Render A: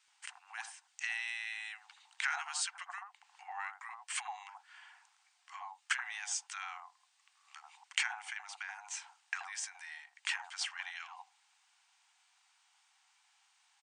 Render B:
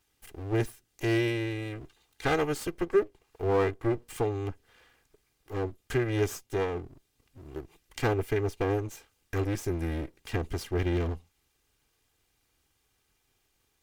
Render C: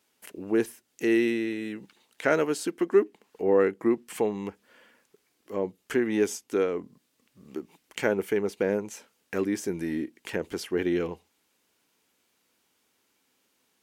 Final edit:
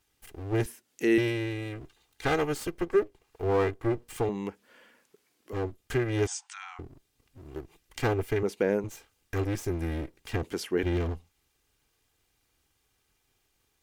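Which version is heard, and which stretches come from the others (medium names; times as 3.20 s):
B
0.66–1.18 s: from C
4.29–5.53 s: from C
6.27–6.79 s: from A
8.43–8.84 s: from C
10.43–10.83 s: from C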